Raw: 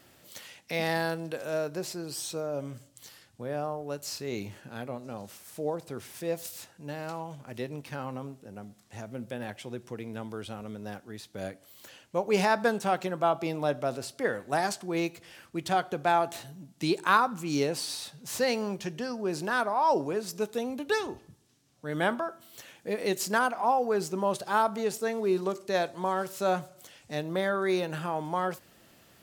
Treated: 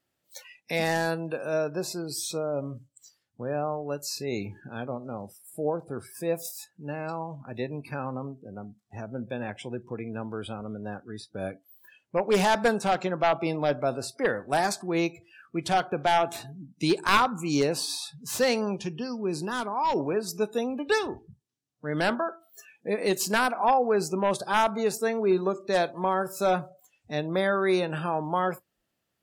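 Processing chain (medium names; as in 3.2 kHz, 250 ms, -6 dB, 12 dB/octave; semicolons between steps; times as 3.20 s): one-sided wavefolder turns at -18.5 dBFS; spectral noise reduction 25 dB; 18.82–19.98 s: fifteen-band graphic EQ 630 Hz -10 dB, 1.6 kHz -9 dB, 6.3 kHz -4 dB; trim +3.5 dB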